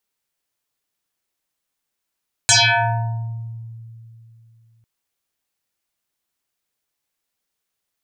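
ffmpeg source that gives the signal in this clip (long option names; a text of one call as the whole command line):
ffmpeg -f lavfi -i "aevalsrc='0.355*pow(10,-3*t/3.09)*sin(2*PI*114*t+11*pow(10,-3*t/1.18)*sin(2*PI*7.12*114*t))':duration=2.35:sample_rate=44100" out.wav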